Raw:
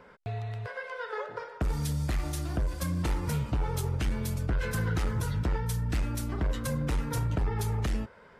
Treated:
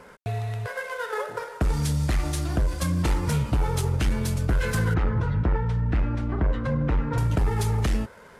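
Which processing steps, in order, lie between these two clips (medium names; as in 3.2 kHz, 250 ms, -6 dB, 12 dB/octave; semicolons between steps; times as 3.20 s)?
CVSD coder 64 kbps; 4.94–7.18 s: low-pass 1.9 kHz 12 dB/octave; trim +6 dB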